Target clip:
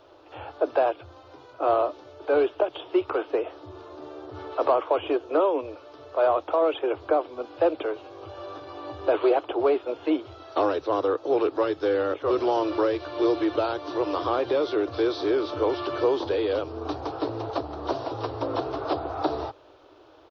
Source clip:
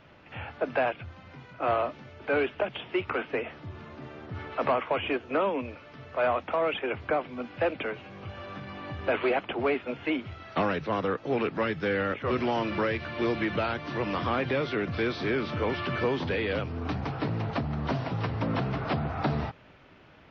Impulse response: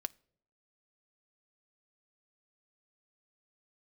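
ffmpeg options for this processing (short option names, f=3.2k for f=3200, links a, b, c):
-af "firequalizer=gain_entry='entry(110,0);entry(180,-27);entry(310,13);entry(1200,8);entry(2000,-6);entry(3700,10)':delay=0.05:min_phase=1,volume=-6dB"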